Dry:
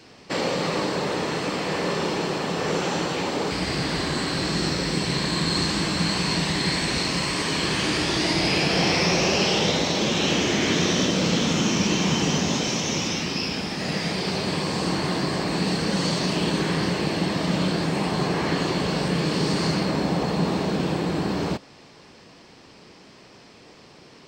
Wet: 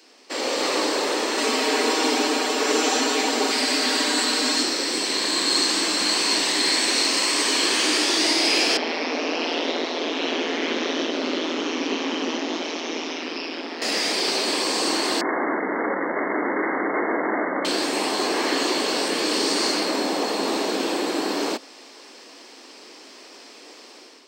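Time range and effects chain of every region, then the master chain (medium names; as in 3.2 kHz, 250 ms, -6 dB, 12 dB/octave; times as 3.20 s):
1.37–4.63 s: comb 6 ms, depth 99% + frequency shift -58 Hz
8.77–13.82 s: ring modulator 82 Hz + distance through air 260 m
15.21–17.65 s: Schmitt trigger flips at -37.5 dBFS + brick-wall FIR low-pass 2.2 kHz
whole clip: treble shelf 4.9 kHz +10.5 dB; level rider gain up to 8.5 dB; steep high-pass 250 Hz 48 dB/octave; trim -5.5 dB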